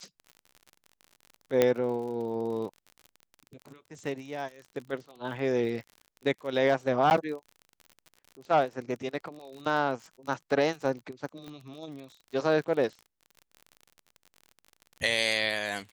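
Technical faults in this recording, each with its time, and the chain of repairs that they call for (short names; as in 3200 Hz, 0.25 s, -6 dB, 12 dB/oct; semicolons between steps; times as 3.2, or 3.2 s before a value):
crackle 46/s -38 dBFS
1.62 pop -9 dBFS
7.1–7.11 gap 9.9 ms
11.48 pop -29 dBFS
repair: de-click; interpolate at 7.1, 9.9 ms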